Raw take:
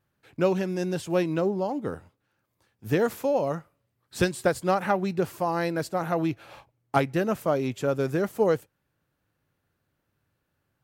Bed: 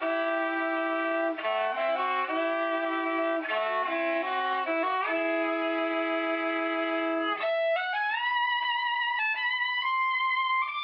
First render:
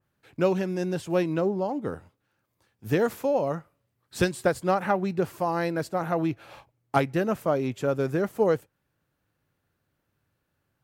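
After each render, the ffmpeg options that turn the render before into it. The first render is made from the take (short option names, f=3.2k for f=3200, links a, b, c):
-af "adynamicequalizer=threshold=0.00708:dfrequency=2600:dqfactor=0.7:tfrequency=2600:tqfactor=0.7:attack=5:release=100:ratio=0.375:range=2.5:mode=cutabove:tftype=highshelf"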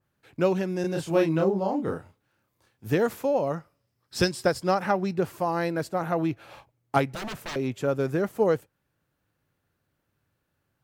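-filter_complex "[0:a]asettb=1/sr,asplit=3[a][b][c];[a]atrim=end=0.814[d];[b]atrim=start=0.81:end=2.87,asetpts=PTS-STARTPTS,afade=t=in:d=0.004:c=qsin,afade=t=out:st=2.056:d=0.004:c=qsin,asplit=2[e][f];[f]adelay=31,volume=-2dB[g];[e][g]amix=inputs=2:normalize=0,atrim=end_sample=90846[h];[c]atrim=start=2.866[i];[d][h]acrossfade=d=0.004:c1=hsin:c2=qsin[j];[j][i]acrossfade=d=0.004:c1=qsin:c2=hsin,asettb=1/sr,asplit=3[k][l][m];[k]atrim=end=3.564[n];[l]atrim=start=3.56:end=5.14,asetpts=PTS-STARTPTS,afade=t=in:d=0.004:c=qsin,afade=t=out:st=1.576:d=0.004:c=qsin,equalizer=f=5.2k:t=o:w=0.26:g=12.5[o];[m]atrim=start=5.136[p];[n][o]acrossfade=d=0.004:c1=hsin:c2=qsin[q];[q][p]acrossfade=d=0.004:c1=qsin:c2=hsin,asettb=1/sr,asplit=3[r][s][t];[r]atrim=end=7.074[u];[s]atrim=start=7.07:end=7.56,asetpts=PTS-STARTPTS,afade=t=in:d=0.004:c=qsin,afade=t=out:st=0.486:d=0.004:c=qsin,aeval=exprs='0.0335*(abs(mod(val(0)/0.0335+3,4)-2)-1)':c=same[v];[t]atrim=start=7.556[w];[u][v]acrossfade=d=0.004:c1=hsin:c2=qsin[x];[x][w]acrossfade=d=0.004:c1=qsin:c2=hsin"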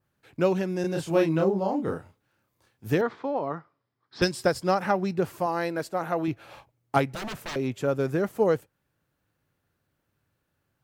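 -filter_complex "[0:a]asettb=1/sr,asplit=3[a][b][c];[a]atrim=end=3.014[d];[b]atrim=start=3.01:end=4.22,asetpts=PTS-STARTPTS,afade=t=in:d=0.004:c=qsin,afade=t=out:st=1.206:d=0.004:c=qsin,highpass=170,equalizer=f=200:t=q:w=4:g=-7,equalizer=f=550:t=q:w=4:g=-7,equalizer=f=1.1k:t=q:w=4:g=4,equalizer=f=2.7k:t=q:w=4:g=-9,lowpass=f=3.8k:w=0.5412,lowpass=f=3.8k:w=1.3066[e];[c]atrim=start=4.216[f];[d][e]acrossfade=d=0.004:c1=hsin:c2=qsin[g];[g][f]acrossfade=d=0.004:c1=qsin:c2=hsin,asettb=1/sr,asplit=3[h][i][j];[h]atrim=end=5.464[k];[i]atrim=start=5.46:end=6.28,asetpts=PTS-STARTPTS,afade=t=in:d=0.004:c=qsin,afade=t=out:st=0.816:d=0.004:c=qsin,equalizer=f=88:t=o:w=2.2:g=-9.5[l];[j]atrim=start=6.276[m];[k][l]acrossfade=d=0.004:c1=hsin:c2=qsin[n];[n][m]acrossfade=d=0.004:c1=qsin:c2=hsin"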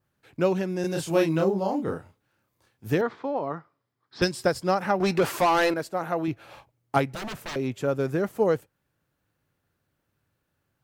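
-filter_complex "[0:a]asettb=1/sr,asplit=3[a][b][c];[a]atrim=end=0.834[d];[b]atrim=start=0.83:end=1.84,asetpts=PTS-STARTPTS,afade=t=in:d=0.004:c=qsin,afade=t=out:st=1.006:d=0.004:c=qsin,highshelf=f=3.5k:g=7[e];[c]atrim=start=1.836[f];[d][e]acrossfade=d=0.004:c1=hsin:c2=qsin[g];[g][f]acrossfade=d=0.004:c1=qsin:c2=hsin,asettb=1/sr,asplit=3[h][i][j];[h]atrim=end=5.004[k];[i]atrim=start=5:end=5.74,asetpts=PTS-STARTPTS,afade=t=in:d=0.004:c=qsin,afade=t=out:st=0.736:d=0.004:c=qsin,asplit=2[l][m];[m]highpass=f=720:p=1,volume=22dB,asoftclip=type=tanh:threshold=-13dB[n];[l][n]amix=inputs=2:normalize=0,lowpass=f=7.7k:p=1,volume=-6dB[o];[j]atrim=start=5.736[p];[k][o]acrossfade=d=0.004:c1=hsin:c2=qsin[q];[q][p]acrossfade=d=0.004:c1=qsin:c2=hsin"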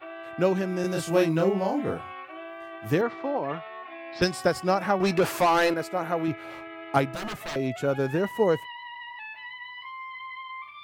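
-filter_complex "[1:a]volume=-12dB[a];[0:a][a]amix=inputs=2:normalize=0"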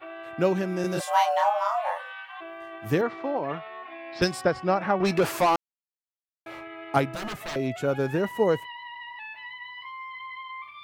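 -filter_complex "[0:a]asplit=3[a][b][c];[a]afade=t=out:st=0.99:d=0.02[d];[b]afreqshift=420,afade=t=in:st=0.99:d=0.02,afade=t=out:st=2.4:d=0.02[e];[c]afade=t=in:st=2.4:d=0.02[f];[d][e][f]amix=inputs=3:normalize=0,asettb=1/sr,asplit=3[g][h][i];[g]atrim=end=4.414[j];[h]atrim=start=4.41:end=5.05,asetpts=PTS-STARTPTS,afade=t=in:d=0.004:c=qsin,afade=t=out:st=0.636:d=0.004:c=qsin,lowpass=3.4k[k];[i]atrim=start=5.046[l];[j][k]acrossfade=d=0.004:c1=hsin:c2=qsin[m];[m][l]acrossfade=d=0.004:c1=qsin:c2=hsin,asplit=3[n][o][p];[n]atrim=end=5.56,asetpts=PTS-STARTPTS,afade=t=out:st=5.556:d=0.004:c=hsin[q];[o]atrim=start=5.56:end=6.46,asetpts=PTS-STARTPTS,volume=0[r];[p]atrim=start=6.46,asetpts=PTS-STARTPTS,afade=t=in:d=0.004:c=hsin[s];[q][r][s]concat=n=3:v=0:a=1"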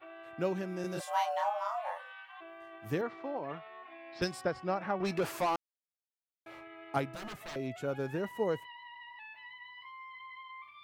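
-af "volume=-9.5dB"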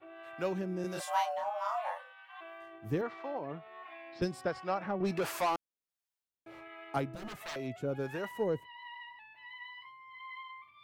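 -filter_complex "[0:a]asplit=2[a][b];[b]asoftclip=type=tanh:threshold=-26.5dB,volume=-6.5dB[c];[a][c]amix=inputs=2:normalize=0,acrossover=split=550[d][e];[d]aeval=exprs='val(0)*(1-0.7/2+0.7/2*cos(2*PI*1.4*n/s))':c=same[f];[e]aeval=exprs='val(0)*(1-0.7/2-0.7/2*cos(2*PI*1.4*n/s))':c=same[g];[f][g]amix=inputs=2:normalize=0"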